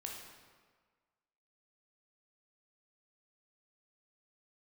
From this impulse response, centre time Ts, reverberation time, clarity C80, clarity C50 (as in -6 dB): 63 ms, 1.6 s, 4.5 dB, 2.0 dB